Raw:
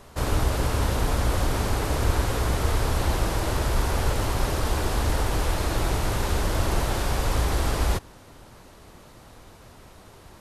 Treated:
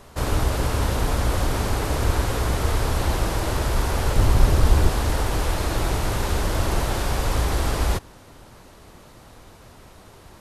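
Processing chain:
0:04.16–0:04.90: low-shelf EQ 220 Hz +9 dB
level +1.5 dB

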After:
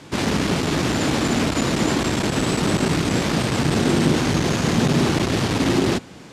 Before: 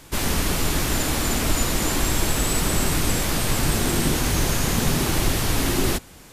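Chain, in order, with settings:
low-shelf EQ 380 Hz +9 dB
soft clipping −9.5 dBFS, distortion −15 dB
band-pass filter 160–5,600 Hz
level +3.5 dB

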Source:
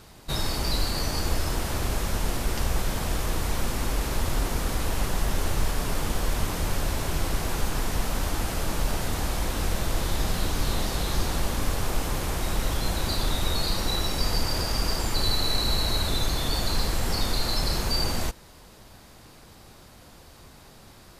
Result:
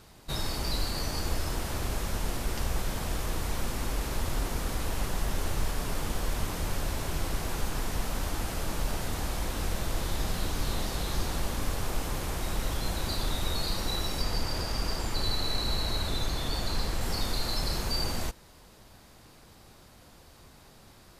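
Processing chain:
0:14.22–0:17.01: high-shelf EQ 7,200 Hz −5 dB
level −4.5 dB

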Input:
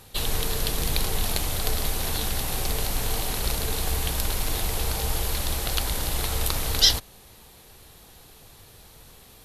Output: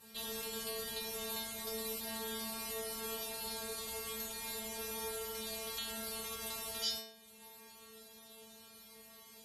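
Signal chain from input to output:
high-pass filter 74 Hz 12 dB per octave
downward compressor 1.5 to 1, threshold −45 dBFS, peak gain reduction 11.5 dB
stiff-string resonator 220 Hz, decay 0.83 s, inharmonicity 0.002
level +12 dB

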